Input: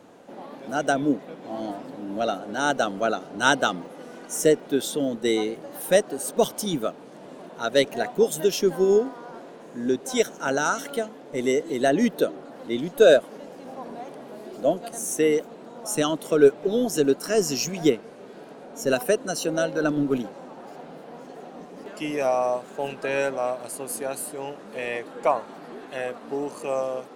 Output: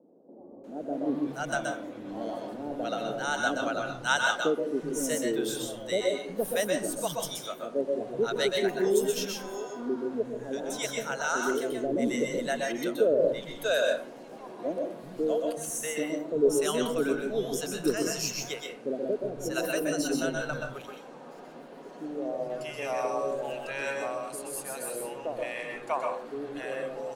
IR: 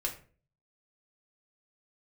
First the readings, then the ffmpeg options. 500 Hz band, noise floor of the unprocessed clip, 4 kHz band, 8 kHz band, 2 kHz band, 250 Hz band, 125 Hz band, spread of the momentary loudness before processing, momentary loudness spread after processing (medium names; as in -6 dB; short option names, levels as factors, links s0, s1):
-5.5 dB, -44 dBFS, -3.5 dB, -3.5 dB, -2.5 dB, -5.5 dB, -6.0 dB, 20 LU, 11 LU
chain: -filter_complex "[0:a]acrossover=split=180|590[s0][s1][s2];[s0]adelay=380[s3];[s2]adelay=640[s4];[s3][s1][s4]amix=inputs=3:normalize=0,asplit=2[s5][s6];[1:a]atrim=start_sample=2205,adelay=125[s7];[s6][s7]afir=irnorm=-1:irlink=0,volume=0.596[s8];[s5][s8]amix=inputs=2:normalize=0,volume=0.531"